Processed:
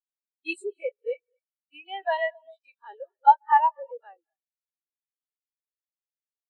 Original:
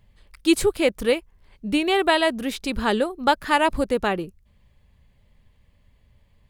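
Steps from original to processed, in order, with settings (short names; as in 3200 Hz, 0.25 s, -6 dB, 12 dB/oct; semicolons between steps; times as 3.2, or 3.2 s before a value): spectral dilation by 60 ms; HPF 410 Hz 12 dB/oct; tilt +3 dB/oct; soft clip -3 dBFS, distortion -20 dB; non-linear reverb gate 0.28 s rising, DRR 9 dB; spectral expander 4:1; gain -2.5 dB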